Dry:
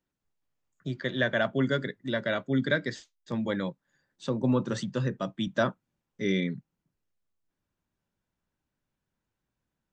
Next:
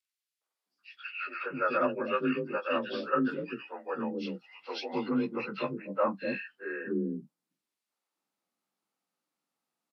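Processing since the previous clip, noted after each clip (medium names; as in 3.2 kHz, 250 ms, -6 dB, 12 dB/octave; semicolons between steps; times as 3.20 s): frequency axis rescaled in octaves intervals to 89%; Bessel high-pass 330 Hz, order 4; three bands offset in time highs, mids, lows 410/660 ms, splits 440/1800 Hz; trim +4.5 dB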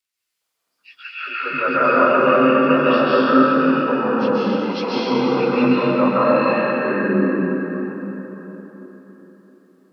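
plate-style reverb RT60 4.2 s, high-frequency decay 0.55×, pre-delay 120 ms, DRR -9 dB; trim +6 dB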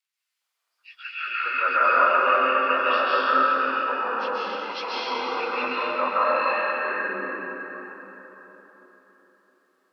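high-pass 910 Hz 12 dB/octave; treble shelf 4.4 kHz -6.5 dB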